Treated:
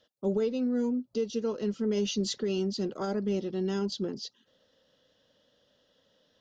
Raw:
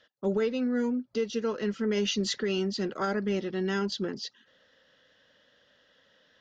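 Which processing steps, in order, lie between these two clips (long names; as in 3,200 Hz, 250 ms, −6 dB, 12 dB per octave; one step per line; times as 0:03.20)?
parametric band 1,800 Hz −13.5 dB 1.2 octaves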